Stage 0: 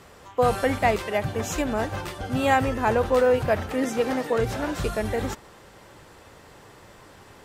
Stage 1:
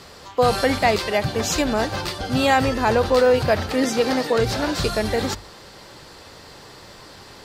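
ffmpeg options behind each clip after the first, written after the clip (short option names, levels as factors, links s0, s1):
-filter_complex "[0:a]equalizer=f=4500:t=o:w=0.67:g=12,bandreject=f=50:t=h:w=6,bandreject=f=100:t=h:w=6,asplit=2[s0][s1];[s1]alimiter=limit=0.168:level=0:latency=1,volume=0.708[s2];[s0][s2]amix=inputs=2:normalize=0"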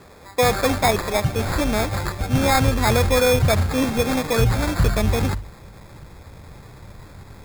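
-af "adynamicsmooth=sensitivity=5:basefreq=1300,acrusher=samples=15:mix=1:aa=0.000001,asubboost=boost=4:cutoff=170"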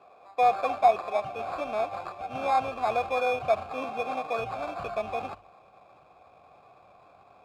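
-filter_complex "[0:a]asplit=3[s0][s1][s2];[s0]bandpass=f=730:t=q:w=8,volume=1[s3];[s1]bandpass=f=1090:t=q:w=8,volume=0.501[s4];[s2]bandpass=f=2440:t=q:w=8,volume=0.355[s5];[s3][s4][s5]amix=inputs=3:normalize=0,volume=1.41"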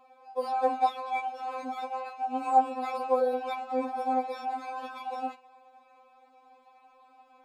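-af "afftfilt=real='re*3.46*eq(mod(b,12),0)':imag='im*3.46*eq(mod(b,12),0)':win_size=2048:overlap=0.75"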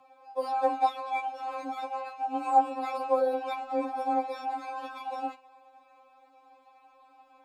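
-af "afreqshift=13"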